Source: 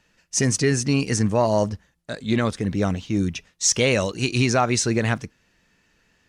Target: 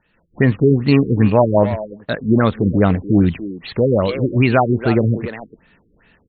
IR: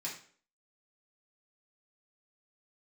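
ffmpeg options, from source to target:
-filter_complex "[0:a]dynaudnorm=framelen=120:gausssize=3:maxgain=10dB,asplit=2[link_01][link_02];[link_02]adelay=290,highpass=300,lowpass=3400,asoftclip=type=hard:threshold=-11dB,volume=-9dB[link_03];[link_01][link_03]amix=inputs=2:normalize=0,afftfilt=real='re*lt(b*sr/1024,460*pow(4500/460,0.5+0.5*sin(2*PI*2.5*pts/sr)))':imag='im*lt(b*sr/1024,460*pow(4500/460,0.5+0.5*sin(2*PI*2.5*pts/sr)))':win_size=1024:overlap=0.75"

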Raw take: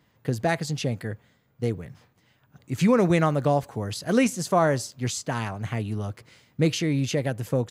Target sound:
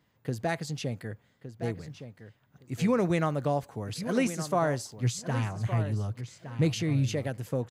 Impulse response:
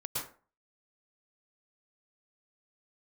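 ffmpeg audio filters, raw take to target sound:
-filter_complex "[0:a]asettb=1/sr,asplit=3[link_01][link_02][link_03];[link_01]atrim=end=5.024[link_04];[link_02]atrim=start=5.02:end=7.13,asetpts=PTS-STARTPTS,afade=type=in:duration=0.004:curve=qsin,afade=type=out:start_time=2.106:duration=0.004:curve=qsin,equalizer=frequency=120:width=2.4:gain=9.5[link_05];[link_03]atrim=start=7.126[link_06];[link_04][link_05]acrossfade=duration=0.004:curve1=hsin:curve2=qsin[link_07];[link_07][link_06]acrossfade=duration=0.004:curve1=qsin:curve2=hsin,asplit=2[link_08][link_09];[link_09]adelay=1164,lowpass=frequency=4700:poles=1,volume=-11dB,asplit=2[link_10][link_11];[link_11]adelay=1164,lowpass=frequency=4700:poles=1,volume=0.17[link_12];[link_08][link_10][link_12]amix=inputs=3:normalize=0,volume=-6dB"

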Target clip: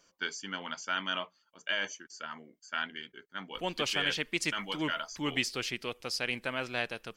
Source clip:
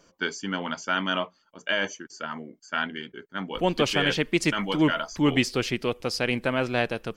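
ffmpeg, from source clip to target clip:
ffmpeg -i in.wav -af "tiltshelf=frequency=970:gain=-5.5,volume=-8.5dB" out.wav

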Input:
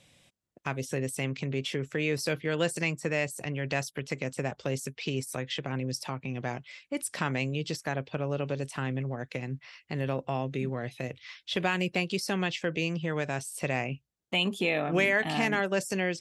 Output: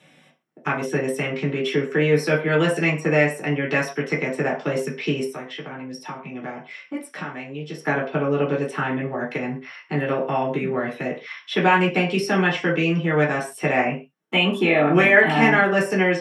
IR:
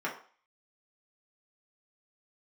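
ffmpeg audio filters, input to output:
-filter_complex "[0:a]asplit=3[link_01][link_02][link_03];[link_01]afade=type=out:start_time=5.25:duration=0.02[link_04];[link_02]acompressor=threshold=-39dB:ratio=6,afade=type=in:start_time=5.25:duration=0.02,afade=type=out:start_time=7.78:duration=0.02[link_05];[link_03]afade=type=in:start_time=7.78:duration=0.02[link_06];[link_04][link_05][link_06]amix=inputs=3:normalize=0[link_07];[1:a]atrim=start_sample=2205,afade=type=out:start_time=0.2:duration=0.01,atrim=end_sample=9261[link_08];[link_07][link_08]afir=irnorm=-1:irlink=0,volume=4.5dB"

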